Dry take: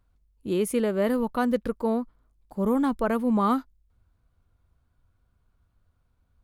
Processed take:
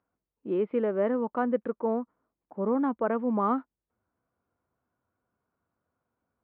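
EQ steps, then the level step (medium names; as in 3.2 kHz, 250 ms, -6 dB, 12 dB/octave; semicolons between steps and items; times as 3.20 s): Gaussian low-pass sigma 4 samples; high-pass 270 Hz 12 dB/octave; distance through air 130 m; 0.0 dB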